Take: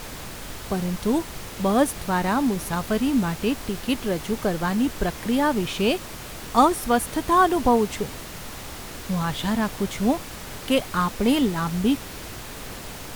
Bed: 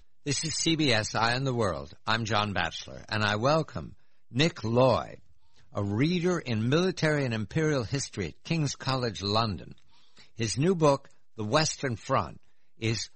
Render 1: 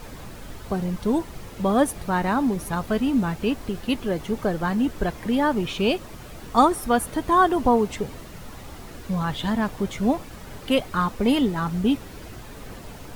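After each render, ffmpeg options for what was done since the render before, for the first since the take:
ffmpeg -i in.wav -af "afftdn=noise_reduction=9:noise_floor=-37" out.wav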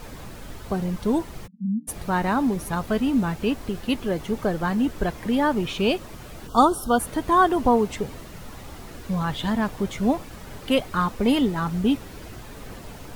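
ffmpeg -i in.wav -filter_complex "[0:a]asplit=3[link_01][link_02][link_03];[link_01]afade=type=out:start_time=1.46:duration=0.02[link_04];[link_02]asuperpass=centerf=200:order=8:qfactor=3.3,afade=type=in:start_time=1.46:duration=0.02,afade=type=out:start_time=1.87:duration=0.02[link_05];[link_03]afade=type=in:start_time=1.87:duration=0.02[link_06];[link_04][link_05][link_06]amix=inputs=3:normalize=0,asplit=3[link_07][link_08][link_09];[link_07]afade=type=out:start_time=6.47:duration=0.02[link_10];[link_08]asuperstop=centerf=2100:order=20:qfactor=1.7,afade=type=in:start_time=6.47:duration=0.02,afade=type=out:start_time=6.98:duration=0.02[link_11];[link_09]afade=type=in:start_time=6.98:duration=0.02[link_12];[link_10][link_11][link_12]amix=inputs=3:normalize=0" out.wav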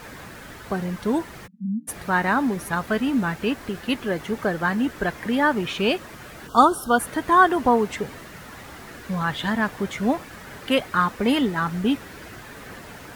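ffmpeg -i in.wav -af "highpass=frequency=120:poles=1,equalizer=frequency=1700:width_type=o:width=0.9:gain=8" out.wav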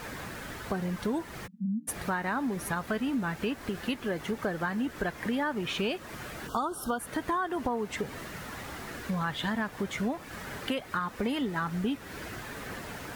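ffmpeg -i in.wav -af "alimiter=limit=-12.5dB:level=0:latency=1:release=283,acompressor=threshold=-30dB:ratio=3" out.wav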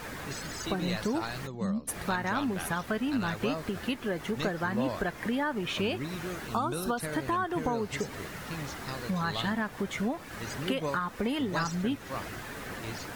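ffmpeg -i in.wav -i bed.wav -filter_complex "[1:a]volume=-11.5dB[link_01];[0:a][link_01]amix=inputs=2:normalize=0" out.wav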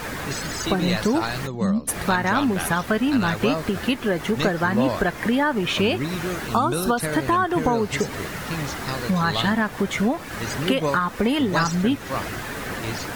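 ffmpeg -i in.wav -af "volume=9.5dB" out.wav

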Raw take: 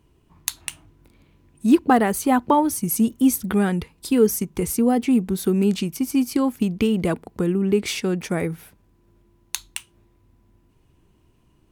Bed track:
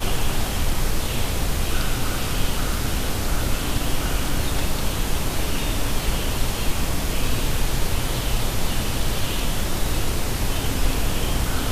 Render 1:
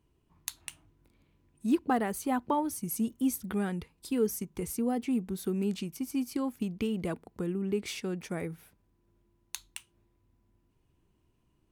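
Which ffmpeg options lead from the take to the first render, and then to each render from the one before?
ffmpeg -i in.wav -af "volume=-11.5dB" out.wav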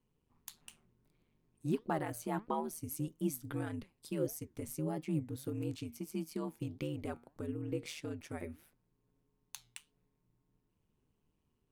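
ffmpeg -i in.wav -af "aeval=exprs='val(0)*sin(2*PI*77*n/s)':channel_layout=same,flanger=delay=3.9:depth=4.6:regen=86:speed=1.6:shape=sinusoidal" out.wav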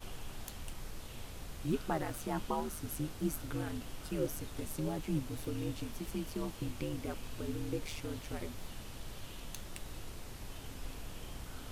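ffmpeg -i in.wav -i bed.wav -filter_complex "[1:a]volume=-23dB[link_01];[0:a][link_01]amix=inputs=2:normalize=0" out.wav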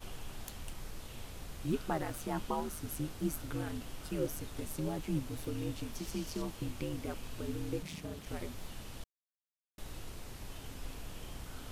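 ffmpeg -i in.wav -filter_complex "[0:a]asettb=1/sr,asplit=3[link_01][link_02][link_03];[link_01]atrim=end=5.954[link_04];[link_02]atrim=start=5.95:end=6.42,asetpts=PTS-STARTPTS,afade=type=in:duration=0.004:curve=qsin,afade=type=out:start_time=0.466:duration=0.004:curve=qsin,equalizer=frequency=5600:width_type=o:width=0.88:gain=8[link_05];[link_03]atrim=start=6.416[link_06];[link_04][link_05]acrossfade=duration=0.004:curve1=hsin:curve2=qsin[link_07];[link_07][link_06]acrossfade=duration=0.004:curve1=qsin:curve2=hsin,asplit=3[link_08][link_09][link_10];[link_08]afade=type=out:start_time=7.82:duration=0.02[link_11];[link_09]aeval=exprs='val(0)*sin(2*PI*170*n/s)':channel_layout=same,afade=type=in:start_time=7.82:duration=0.02,afade=type=out:start_time=8.25:duration=0.02[link_12];[link_10]afade=type=in:start_time=8.25:duration=0.02[link_13];[link_11][link_12][link_13]amix=inputs=3:normalize=0,asplit=3[link_14][link_15][link_16];[link_14]atrim=end=9.04,asetpts=PTS-STARTPTS,afade=type=out:start_time=9.036:duration=0.004:curve=hsin[link_17];[link_15]atrim=start=9.04:end=9.78,asetpts=PTS-STARTPTS,volume=0[link_18];[link_16]atrim=start=9.78,asetpts=PTS-STARTPTS,afade=type=in:duration=0.004:curve=hsin[link_19];[link_17][link_18][link_19]concat=n=3:v=0:a=1" out.wav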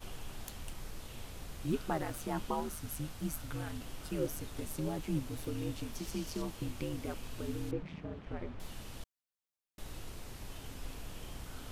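ffmpeg -i in.wav -filter_complex "[0:a]asettb=1/sr,asplit=3[link_01][link_02][link_03];[link_01]atrim=end=2.754[link_04];[link_02]atrim=start=2.75:end=3.8,asetpts=PTS-STARTPTS,afade=type=in:duration=0.004:curve=qsin,afade=type=out:start_time=1.046:duration=0.004:curve=qsin,equalizer=frequency=360:width_type=o:width=0.77:gain=-8.5[link_05];[link_03]atrim=start=3.796[link_06];[link_04][link_05]acrossfade=duration=0.004:curve1=hsin:curve2=qsin[link_07];[link_07][link_06]acrossfade=duration=0.004:curve1=qsin:curve2=hsin,asettb=1/sr,asplit=3[link_08][link_09][link_10];[link_08]atrim=end=7.714[link_11];[link_09]atrim=start=7.71:end=8.6,asetpts=PTS-STARTPTS,afade=type=in:duration=0.004:curve=qsin,afade=type=out:start_time=0.886:duration=0.004:curve=qsin,lowpass=2000[link_12];[link_10]atrim=start=8.596[link_13];[link_11][link_12]acrossfade=duration=0.004:curve1=hsin:curve2=qsin[link_14];[link_14][link_13]acrossfade=duration=0.004:curve1=qsin:curve2=hsin" out.wav

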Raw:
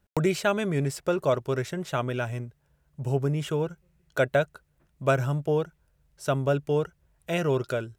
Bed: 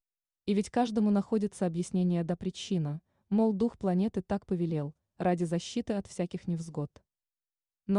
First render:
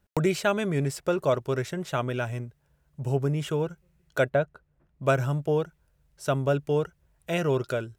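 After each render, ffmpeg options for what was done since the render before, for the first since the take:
ffmpeg -i in.wav -filter_complex "[0:a]asettb=1/sr,asplit=3[link_01][link_02][link_03];[link_01]atrim=end=4.294[link_04];[link_02]atrim=start=4.29:end=5.03,asetpts=PTS-STARTPTS,afade=type=in:duration=0.004:curve=qsin,afade=type=out:start_time=0.736:duration=0.004:curve=qsin,lowpass=frequency=1300:poles=1[link_05];[link_03]atrim=start=5.026[link_06];[link_04][link_05]acrossfade=duration=0.004:curve1=hsin:curve2=qsin[link_07];[link_07][link_06]acrossfade=duration=0.004:curve1=qsin:curve2=hsin" out.wav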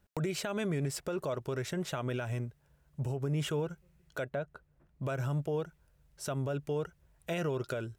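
ffmpeg -i in.wav -af "acompressor=threshold=-25dB:ratio=6,alimiter=level_in=1.5dB:limit=-24dB:level=0:latency=1:release=89,volume=-1.5dB" out.wav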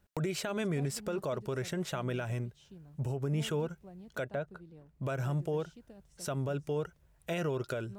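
ffmpeg -i in.wav -i bed.wav -filter_complex "[1:a]volume=-22dB[link_01];[0:a][link_01]amix=inputs=2:normalize=0" out.wav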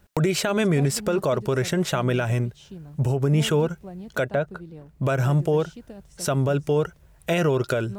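ffmpeg -i in.wav -af "volume=12dB" out.wav

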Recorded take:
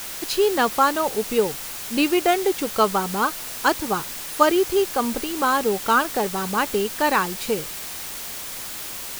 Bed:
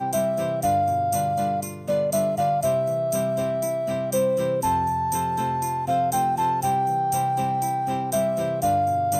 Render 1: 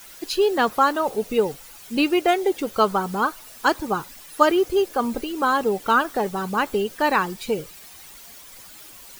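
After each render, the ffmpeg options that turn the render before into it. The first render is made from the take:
ffmpeg -i in.wav -af "afftdn=noise_reduction=13:noise_floor=-33" out.wav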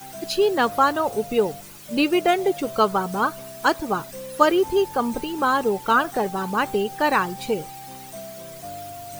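ffmpeg -i in.wav -i bed.wav -filter_complex "[1:a]volume=-15dB[link_01];[0:a][link_01]amix=inputs=2:normalize=0" out.wav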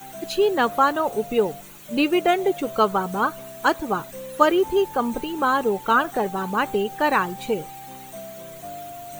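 ffmpeg -i in.wav -af "equalizer=frequency=100:width_type=o:width=0.33:gain=-10,equalizer=frequency=5000:width_type=o:width=0.33:gain=-10,equalizer=frequency=10000:width_type=o:width=0.33:gain=-5" out.wav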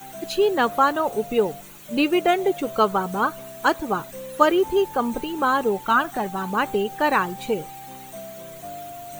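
ffmpeg -i in.wav -filter_complex "[0:a]asettb=1/sr,asplit=3[link_01][link_02][link_03];[link_01]atrim=end=5.844[link_04];[link_02]atrim=start=5.84:end=6.46,asetpts=PTS-STARTPTS,afade=type=in:duration=0.004:curve=qsin,afade=type=out:start_time=0.616:duration=0.004:curve=qsin,equalizer=frequency=470:width=3.7:gain=-11.5[link_05];[link_03]atrim=start=6.456[link_06];[link_04][link_05]acrossfade=duration=0.004:curve1=hsin:curve2=qsin[link_07];[link_07][link_06]acrossfade=duration=0.004:curve1=qsin:curve2=hsin" out.wav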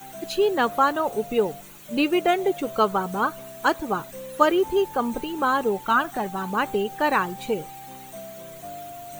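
ffmpeg -i in.wav -af "volume=-1.5dB" out.wav

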